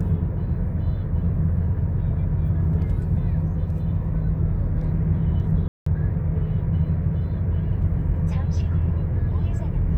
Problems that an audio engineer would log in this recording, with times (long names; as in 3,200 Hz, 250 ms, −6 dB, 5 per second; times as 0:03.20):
0:05.68–0:05.86: drop-out 184 ms